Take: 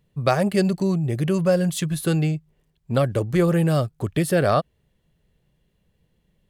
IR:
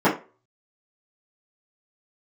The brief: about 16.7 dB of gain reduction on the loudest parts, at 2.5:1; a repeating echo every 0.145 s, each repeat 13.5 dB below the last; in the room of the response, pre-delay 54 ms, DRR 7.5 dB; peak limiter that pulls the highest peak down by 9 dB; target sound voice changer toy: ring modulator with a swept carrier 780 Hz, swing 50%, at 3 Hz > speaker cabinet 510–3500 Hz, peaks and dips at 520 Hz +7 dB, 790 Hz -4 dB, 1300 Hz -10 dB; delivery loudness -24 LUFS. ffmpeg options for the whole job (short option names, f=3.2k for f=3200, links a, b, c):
-filter_complex "[0:a]acompressor=threshold=-41dB:ratio=2.5,alimiter=level_in=6.5dB:limit=-24dB:level=0:latency=1,volume=-6.5dB,aecho=1:1:145|290:0.211|0.0444,asplit=2[a][b];[1:a]atrim=start_sample=2205,adelay=54[c];[b][c]afir=irnorm=-1:irlink=0,volume=-28dB[d];[a][d]amix=inputs=2:normalize=0,aeval=exprs='val(0)*sin(2*PI*780*n/s+780*0.5/3*sin(2*PI*3*n/s))':c=same,highpass=510,equalizer=f=520:t=q:w=4:g=7,equalizer=f=790:t=q:w=4:g=-4,equalizer=f=1.3k:t=q:w=4:g=-10,lowpass=f=3.5k:w=0.5412,lowpass=f=3.5k:w=1.3066,volume=19dB"